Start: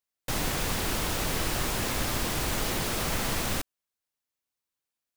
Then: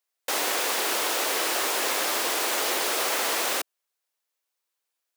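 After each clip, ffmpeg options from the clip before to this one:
ffmpeg -i in.wav -af "highpass=frequency=380:width=0.5412,highpass=frequency=380:width=1.3066,volume=5.5dB" out.wav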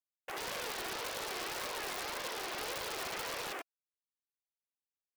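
ffmpeg -i in.wav -af "flanger=delay=1.7:depth=1.2:regen=51:speed=1.8:shape=triangular,afwtdn=0.0178,aeval=exprs='(mod(16.8*val(0)+1,2)-1)/16.8':channel_layout=same,volume=-7dB" out.wav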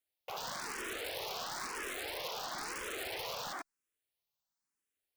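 ffmpeg -i in.wav -filter_complex "[0:a]alimiter=level_in=15dB:limit=-24dB:level=0:latency=1,volume=-15dB,asplit=2[link_01][link_02];[link_02]afreqshift=1[link_03];[link_01][link_03]amix=inputs=2:normalize=1,volume=9dB" out.wav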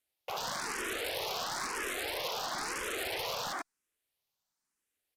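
ffmpeg -i in.wav -af "aresample=32000,aresample=44100,volume=4.5dB" out.wav

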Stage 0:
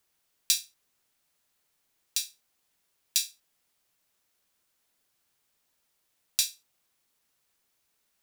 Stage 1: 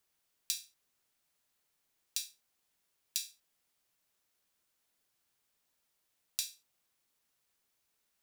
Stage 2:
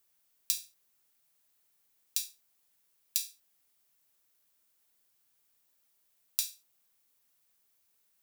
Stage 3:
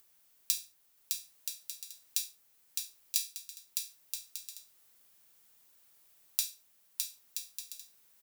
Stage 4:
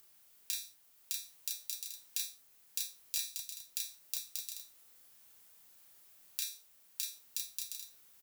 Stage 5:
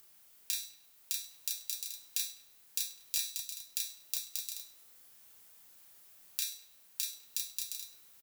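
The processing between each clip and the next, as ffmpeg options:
ffmpeg -i in.wav -af "acompressor=threshold=-27dB:ratio=5,volume=-4.5dB" out.wav
ffmpeg -i in.wav -af "highshelf=frequency=10000:gain=10.5" out.wav
ffmpeg -i in.wav -filter_complex "[0:a]acompressor=mode=upward:threshold=-58dB:ratio=2.5,asplit=2[link_01][link_02];[link_02]aecho=0:1:610|976|1196|1327|1406:0.631|0.398|0.251|0.158|0.1[link_03];[link_01][link_03]amix=inputs=2:normalize=0" out.wav
ffmpeg -i in.wav -filter_complex "[0:a]acrossover=split=180|1000|2400[link_01][link_02][link_03][link_04];[link_04]alimiter=limit=-11dB:level=0:latency=1:release=170[link_05];[link_01][link_02][link_03][link_05]amix=inputs=4:normalize=0,asplit=2[link_06][link_07];[link_07]adelay=32,volume=-2.5dB[link_08];[link_06][link_08]amix=inputs=2:normalize=0,volume=1dB" out.wav
ffmpeg -i in.wav -filter_complex "[0:a]asplit=2[link_01][link_02];[link_02]adelay=101,lowpass=frequency=4200:poles=1,volume=-14dB,asplit=2[link_03][link_04];[link_04]adelay=101,lowpass=frequency=4200:poles=1,volume=0.54,asplit=2[link_05][link_06];[link_06]adelay=101,lowpass=frequency=4200:poles=1,volume=0.54,asplit=2[link_07][link_08];[link_08]adelay=101,lowpass=frequency=4200:poles=1,volume=0.54,asplit=2[link_09][link_10];[link_10]adelay=101,lowpass=frequency=4200:poles=1,volume=0.54[link_11];[link_01][link_03][link_05][link_07][link_09][link_11]amix=inputs=6:normalize=0,volume=2.5dB" out.wav

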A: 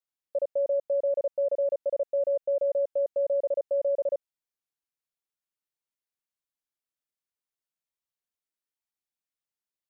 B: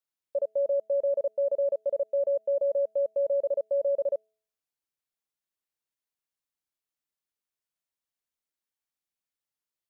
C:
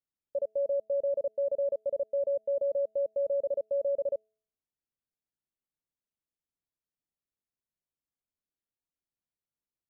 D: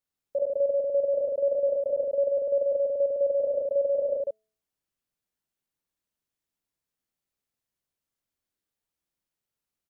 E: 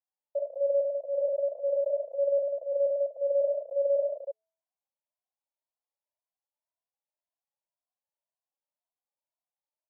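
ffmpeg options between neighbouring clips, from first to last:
ffmpeg -i in.wav -af "bandreject=frequency=217.1:width_type=h:width=4,bandreject=frequency=434.2:width_type=h:width=4,bandreject=frequency=651.3:width_type=h:width=4" out.wav
ffmpeg -i in.wav -af "tiltshelf=frequency=670:gain=9,volume=-4.5dB" out.wav
ffmpeg -i in.wav -af "aecho=1:1:46.65|148.7:0.562|0.708,volume=3.5dB" out.wav
ffmpeg -i in.wav -filter_complex "[0:a]asuperpass=centerf=750:order=8:qfactor=1.5,asplit=2[link_01][link_02];[link_02]adelay=2.3,afreqshift=1.9[link_03];[link_01][link_03]amix=inputs=2:normalize=1,volume=2dB" out.wav

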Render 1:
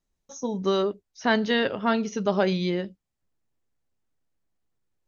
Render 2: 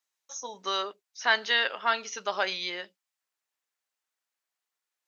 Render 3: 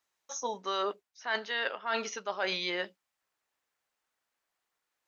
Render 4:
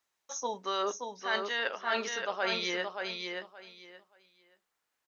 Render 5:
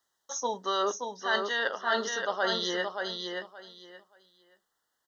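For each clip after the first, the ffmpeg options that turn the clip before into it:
ffmpeg -i in.wav -af "highpass=1100,volume=3.5dB" out.wav
ffmpeg -i in.wav -af "highshelf=frequency=2400:gain=-9,areverse,acompressor=threshold=-37dB:ratio=12,areverse,volume=8.5dB" out.wav
ffmpeg -i in.wav -af "aecho=1:1:575|1150|1725:0.562|0.112|0.0225" out.wav
ffmpeg -i in.wav -af "asuperstop=centerf=2400:order=12:qfactor=2.8,volume=3.5dB" out.wav

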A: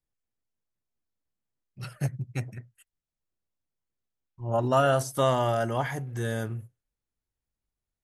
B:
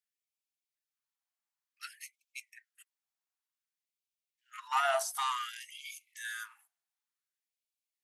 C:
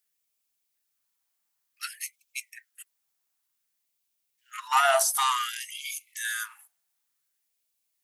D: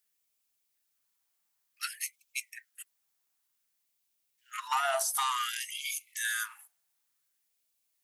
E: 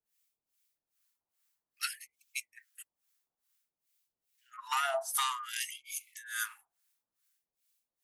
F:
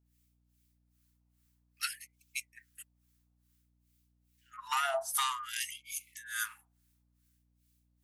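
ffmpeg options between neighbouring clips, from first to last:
ffmpeg -i in.wav -af "asoftclip=type=tanh:threshold=-17dB,afftfilt=real='re*gte(b*sr/1024,640*pow(2200/640,0.5+0.5*sin(2*PI*0.55*pts/sr)))':imag='im*gte(b*sr/1024,640*pow(2200/640,0.5+0.5*sin(2*PI*0.55*pts/sr)))':win_size=1024:overlap=0.75" out.wav
ffmpeg -i in.wav -af "crystalizer=i=1:c=0,volume=7.5dB" out.wav
ffmpeg -i in.wav -af "acompressor=threshold=-27dB:ratio=6" out.wav
ffmpeg -i in.wav -filter_complex "[0:a]acrossover=split=980[link_01][link_02];[link_01]aeval=exprs='val(0)*(1-1/2+1/2*cos(2*PI*2.4*n/s))':channel_layout=same[link_03];[link_02]aeval=exprs='val(0)*(1-1/2-1/2*cos(2*PI*2.4*n/s))':channel_layout=same[link_04];[link_03][link_04]amix=inputs=2:normalize=0,volume=2dB" out.wav
ffmpeg -i in.wav -af "aeval=exprs='val(0)+0.000251*(sin(2*PI*60*n/s)+sin(2*PI*2*60*n/s)/2+sin(2*PI*3*60*n/s)/3+sin(2*PI*4*60*n/s)/4+sin(2*PI*5*60*n/s)/5)':channel_layout=same" out.wav

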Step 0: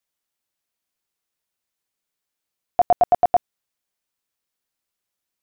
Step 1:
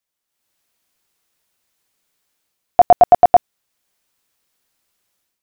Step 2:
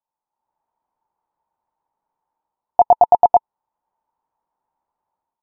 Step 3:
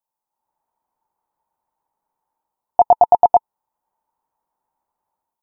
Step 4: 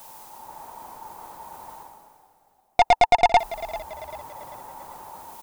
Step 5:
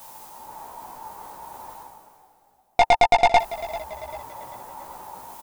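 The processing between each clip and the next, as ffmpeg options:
ffmpeg -i in.wav -af "dynaudnorm=framelen=260:gausssize=3:maxgain=12dB" out.wav
ffmpeg -i in.wav -af "alimiter=limit=-5dB:level=0:latency=1,lowpass=frequency=900:width_type=q:width=11,volume=-7.5dB" out.wav
ffmpeg -i in.wav -af "crystalizer=i=1:c=0" out.wav
ffmpeg -i in.wav -filter_complex "[0:a]areverse,acompressor=mode=upward:threshold=-20dB:ratio=2.5,areverse,aeval=exprs='(tanh(7.08*val(0)+0.25)-tanh(0.25))/7.08':channel_layout=same,asplit=5[link_01][link_02][link_03][link_04][link_05];[link_02]adelay=392,afreqshift=-40,volume=-16dB[link_06];[link_03]adelay=784,afreqshift=-80,volume=-22.9dB[link_07];[link_04]adelay=1176,afreqshift=-120,volume=-29.9dB[link_08];[link_05]adelay=1568,afreqshift=-160,volume=-36.8dB[link_09];[link_01][link_06][link_07][link_08][link_09]amix=inputs=5:normalize=0,volume=5.5dB" out.wav
ffmpeg -i in.wav -filter_complex "[0:a]asplit=2[link_01][link_02];[link_02]adelay=16,volume=-4.5dB[link_03];[link_01][link_03]amix=inputs=2:normalize=0" out.wav

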